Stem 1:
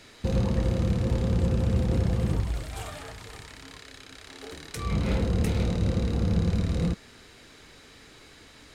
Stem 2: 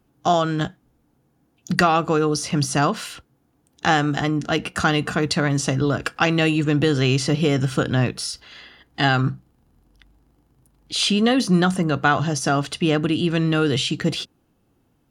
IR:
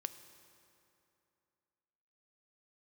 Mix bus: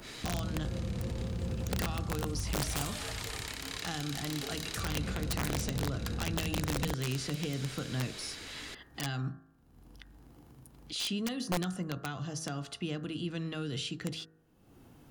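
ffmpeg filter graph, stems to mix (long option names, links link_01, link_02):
-filter_complex "[0:a]acompressor=threshold=-30dB:ratio=6,alimiter=level_in=6dB:limit=-24dB:level=0:latency=1:release=201,volume=-6dB,adynamicequalizer=threshold=0.00126:dfrequency=1800:dqfactor=0.7:tfrequency=1800:tqfactor=0.7:attack=5:release=100:ratio=0.375:range=2.5:mode=boostabove:tftype=highshelf,volume=3dB[link_01];[1:a]bandreject=frequency=53.23:width_type=h:width=4,bandreject=frequency=106.46:width_type=h:width=4,bandreject=frequency=159.69:width_type=h:width=4,bandreject=frequency=212.92:width_type=h:width=4,bandreject=frequency=266.15:width_type=h:width=4,bandreject=frequency=319.38:width_type=h:width=4,bandreject=frequency=372.61:width_type=h:width=4,bandreject=frequency=425.84:width_type=h:width=4,bandreject=frequency=479.07:width_type=h:width=4,bandreject=frequency=532.3:width_type=h:width=4,bandreject=frequency=585.53:width_type=h:width=4,bandreject=frequency=638.76:width_type=h:width=4,bandreject=frequency=691.99:width_type=h:width=4,bandreject=frequency=745.22:width_type=h:width=4,bandreject=frequency=798.45:width_type=h:width=4,bandreject=frequency=851.68:width_type=h:width=4,bandreject=frequency=904.91:width_type=h:width=4,bandreject=frequency=958.14:width_type=h:width=4,bandreject=frequency=1011.37:width_type=h:width=4,bandreject=frequency=1064.6:width_type=h:width=4,bandreject=frequency=1117.83:width_type=h:width=4,bandreject=frequency=1171.06:width_type=h:width=4,bandreject=frequency=1224.29:width_type=h:width=4,bandreject=frequency=1277.52:width_type=h:width=4,bandreject=frequency=1330.75:width_type=h:width=4,bandreject=frequency=1383.98:width_type=h:width=4,bandreject=frequency=1437.21:width_type=h:width=4,bandreject=frequency=1490.44:width_type=h:width=4,bandreject=frequency=1543.67:width_type=h:width=4,bandreject=frequency=1596.9:width_type=h:width=4,bandreject=frequency=1650.13:width_type=h:width=4,bandreject=frequency=1703.36:width_type=h:width=4,bandreject=frequency=1756.59:width_type=h:width=4,bandreject=frequency=1809.82:width_type=h:width=4,bandreject=frequency=1863.05:width_type=h:width=4,acompressor=mode=upward:threshold=-24dB:ratio=2.5,volume=-13.5dB[link_02];[link_01][link_02]amix=inputs=2:normalize=0,acrossover=split=250|3000[link_03][link_04][link_05];[link_04]acompressor=threshold=-39dB:ratio=6[link_06];[link_03][link_06][link_05]amix=inputs=3:normalize=0,aeval=exprs='(mod(17.8*val(0)+1,2)-1)/17.8':channel_layout=same"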